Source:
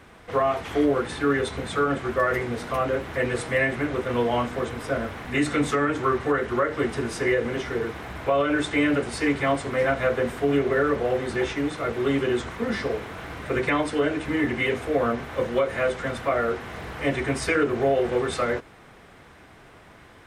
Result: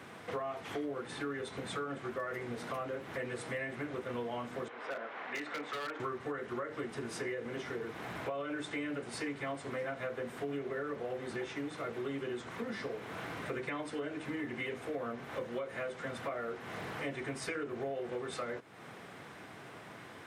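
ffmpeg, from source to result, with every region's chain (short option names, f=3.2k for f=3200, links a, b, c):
-filter_complex "[0:a]asettb=1/sr,asplit=3[a][b][c];[a]atrim=end=4.684[d];[b]atrim=start=4.68:end=6,asetpts=PTS-STARTPTS,afade=t=in:d=0.004:c=qsin,afade=t=out:st=1.316:d=0.004:c=qsin,highpass=540,lowpass=2.6k,aeval=exprs='0.075*(abs(mod(val(0)/0.075+3,4)-2)-1)':c=same[e];[c]atrim=start=5.996[f];[d][e]acrossfade=d=0.004:c1=hsin:c2=qsin[g];[g][f]acrossfade=d=0.004:c1=qsin:c2=hsin,highpass=f=110:w=0.5412,highpass=f=110:w=1.3066,acompressor=threshold=-39dB:ratio=4"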